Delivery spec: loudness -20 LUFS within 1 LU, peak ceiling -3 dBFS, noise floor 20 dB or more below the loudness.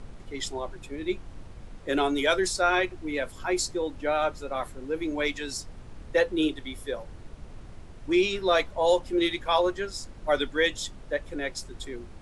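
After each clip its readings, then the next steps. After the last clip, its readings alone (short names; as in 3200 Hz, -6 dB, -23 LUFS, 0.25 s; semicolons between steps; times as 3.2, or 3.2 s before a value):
noise floor -45 dBFS; noise floor target -48 dBFS; loudness -28.0 LUFS; peak -10.5 dBFS; loudness target -20.0 LUFS
-> noise print and reduce 6 dB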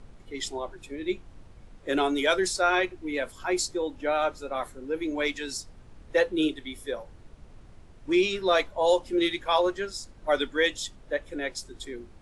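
noise floor -51 dBFS; loudness -28.0 LUFS; peak -10.0 dBFS; loudness target -20.0 LUFS
-> gain +8 dB; limiter -3 dBFS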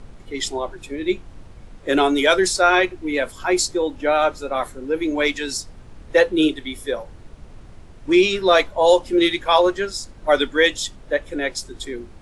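loudness -20.0 LUFS; peak -3.0 dBFS; noise floor -43 dBFS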